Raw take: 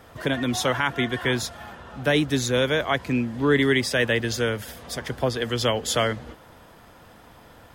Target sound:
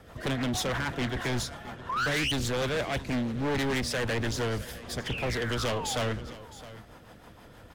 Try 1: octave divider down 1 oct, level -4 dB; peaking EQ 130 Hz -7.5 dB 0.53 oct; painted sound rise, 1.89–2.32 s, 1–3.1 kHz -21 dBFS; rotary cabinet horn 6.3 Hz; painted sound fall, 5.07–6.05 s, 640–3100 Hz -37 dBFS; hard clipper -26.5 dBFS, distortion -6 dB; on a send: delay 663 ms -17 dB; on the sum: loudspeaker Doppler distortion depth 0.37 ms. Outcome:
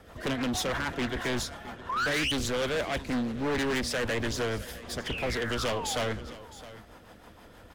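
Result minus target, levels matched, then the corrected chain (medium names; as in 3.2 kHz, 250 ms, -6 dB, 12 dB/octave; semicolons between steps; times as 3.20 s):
125 Hz band -4.5 dB
octave divider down 1 oct, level -4 dB; painted sound rise, 1.89–2.32 s, 1–3.1 kHz -21 dBFS; rotary cabinet horn 6.3 Hz; painted sound fall, 5.07–6.05 s, 640–3100 Hz -37 dBFS; hard clipper -26.5 dBFS, distortion -6 dB; on a send: delay 663 ms -17 dB; on the sum: loudspeaker Doppler distortion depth 0.37 ms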